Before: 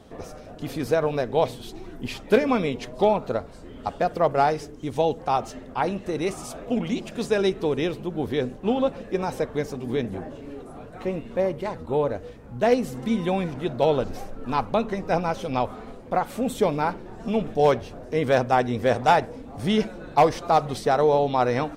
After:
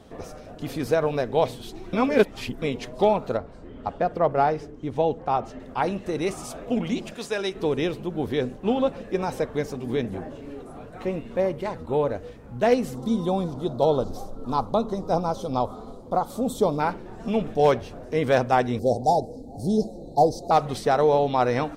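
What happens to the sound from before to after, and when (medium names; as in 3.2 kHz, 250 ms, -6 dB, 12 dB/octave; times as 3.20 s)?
1.93–2.62 s: reverse
3.37–5.60 s: low-pass 1.8 kHz 6 dB/octave
7.14–7.55 s: bass shelf 480 Hz -11.5 dB
12.95–16.80 s: high-order bell 2.1 kHz -16 dB 1.1 oct
18.79–20.51 s: Chebyshev band-stop 800–4200 Hz, order 4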